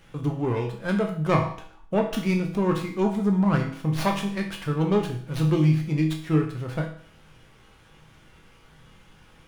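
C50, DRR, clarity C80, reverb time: 8.0 dB, 1.0 dB, 11.5 dB, 0.55 s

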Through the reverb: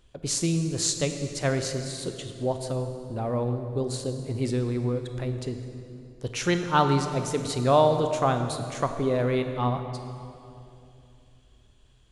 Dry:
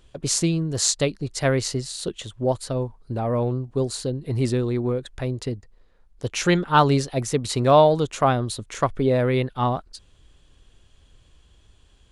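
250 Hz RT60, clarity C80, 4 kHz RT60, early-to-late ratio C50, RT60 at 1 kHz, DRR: 3.5 s, 8.5 dB, 2.1 s, 7.5 dB, 2.5 s, 7.0 dB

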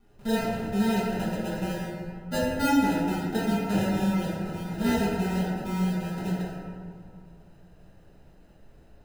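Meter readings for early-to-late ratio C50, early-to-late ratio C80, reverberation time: -1.5 dB, 0.5 dB, 2.3 s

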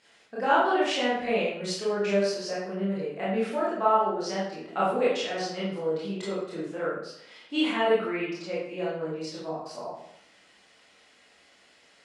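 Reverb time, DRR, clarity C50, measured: 0.75 s, -8.5 dB, 0.5 dB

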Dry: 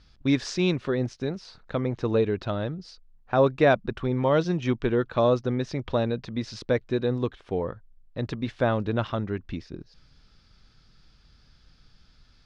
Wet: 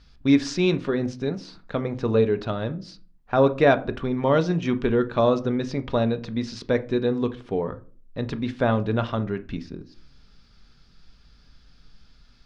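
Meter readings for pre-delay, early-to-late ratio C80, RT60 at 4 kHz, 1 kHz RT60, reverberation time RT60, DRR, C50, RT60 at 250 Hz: 4 ms, 23.0 dB, 0.25 s, 0.35 s, 0.40 s, 9.0 dB, 18.0 dB, 0.60 s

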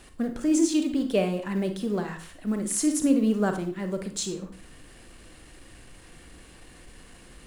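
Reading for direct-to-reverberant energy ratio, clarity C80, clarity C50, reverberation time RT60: 6.5 dB, 15.0 dB, 10.0 dB, 0.45 s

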